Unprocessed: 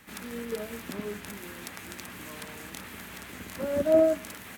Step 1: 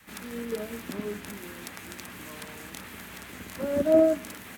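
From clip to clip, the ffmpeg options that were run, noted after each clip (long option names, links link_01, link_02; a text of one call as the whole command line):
ffmpeg -i in.wav -af "adynamicequalizer=threshold=0.0112:dfrequency=280:dqfactor=1.3:tfrequency=280:tqfactor=1.3:attack=5:release=100:ratio=0.375:range=2:mode=boostabove:tftype=bell" out.wav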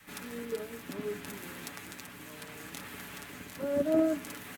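ffmpeg -i in.wav -af "aecho=1:1:7:0.48,tremolo=f=0.67:d=0.35,volume=-2dB" out.wav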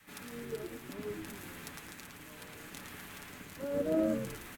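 ffmpeg -i in.wav -filter_complex "[0:a]asplit=5[link_01][link_02][link_03][link_04][link_05];[link_02]adelay=111,afreqshift=-95,volume=-5.5dB[link_06];[link_03]adelay=222,afreqshift=-190,volume=-14.6dB[link_07];[link_04]adelay=333,afreqshift=-285,volume=-23.7dB[link_08];[link_05]adelay=444,afreqshift=-380,volume=-32.9dB[link_09];[link_01][link_06][link_07][link_08][link_09]amix=inputs=5:normalize=0,volume=-4.5dB" out.wav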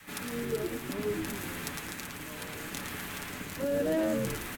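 ffmpeg -i in.wav -filter_complex "[0:a]acrossover=split=400|3400[link_01][link_02][link_03];[link_01]alimiter=level_in=12.5dB:limit=-24dB:level=0:latency=1,volume=-12.5dB[link_04];[link_02]asoftclip=type=tanh:threshold=-38.5dB[link_05];[link_04][link_05][link_03]amix=inputs=3:normalize=0,volume=9dB" out.wav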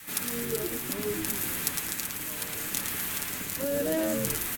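ffmpeg -i in.wav -af "crystalizer=i=2.5:c=0" out.wav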